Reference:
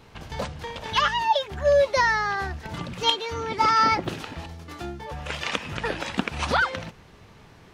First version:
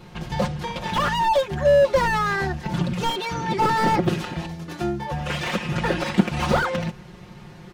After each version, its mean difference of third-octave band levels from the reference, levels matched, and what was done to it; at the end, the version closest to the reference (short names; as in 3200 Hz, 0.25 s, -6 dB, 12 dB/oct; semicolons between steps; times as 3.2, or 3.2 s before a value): 4.0 dB: bell 140 Hz +6.5 dB 2.7 oct; comb 5.6 ms, depth 84%; slew limiter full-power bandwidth 100 Hz; gain +2 dB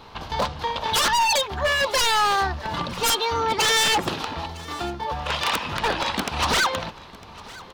6.0 dB: graphic EQ 125/1000/2000/4000/8000 Hz -4/+9/-3/+8/-6 dB; wavefolder -18.5 dBFS; echo 0.954 s -21 dB; gain +3.5 dB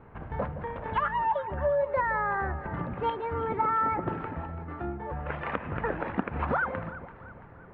9.5 dB: LPF 1700 Hz 24 dB/oct; compressor, threshold -24 dBFS, peak gain reduction 8.5 dB; on a send: echo with dull and thin repeats by turns 0.168 s, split 980 Hz, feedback 68%, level -11.5 dB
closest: first